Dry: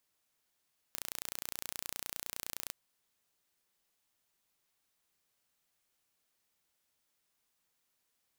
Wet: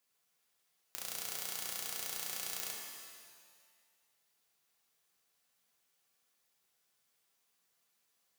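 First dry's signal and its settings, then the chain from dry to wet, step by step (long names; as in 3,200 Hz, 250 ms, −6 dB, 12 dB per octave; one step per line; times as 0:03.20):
impulse train 29.7 per second, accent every 0, −11.5 dBFS 1.78 s
high-pass filter 190 Hz 6 dB per octave
notch comb filter 310 Hz
reverb with rising layers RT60 1.5 s, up +7 semitones, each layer −2 dB, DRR 1 dB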